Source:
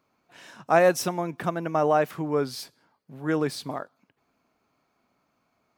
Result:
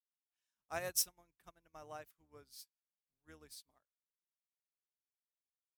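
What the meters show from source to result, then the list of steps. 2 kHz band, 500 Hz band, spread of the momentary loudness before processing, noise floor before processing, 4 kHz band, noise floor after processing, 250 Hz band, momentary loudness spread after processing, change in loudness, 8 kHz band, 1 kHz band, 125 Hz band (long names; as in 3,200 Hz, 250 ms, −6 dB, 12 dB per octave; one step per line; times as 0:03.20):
−20.0 dB, −26.5 dB, 17 LU, −74 dBFS, −9.0 dB, below −85 dBFS, −33.0 dB, 22 LU, −14.0 dB, −3.0 dB, −25.5 dB, −27.5 dB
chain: sub-octave generator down 2 octaves, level −1 dB
first-order pre-emphasis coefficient 0.9
expander for the loud parts 2.5 to 1, over −53 dBFS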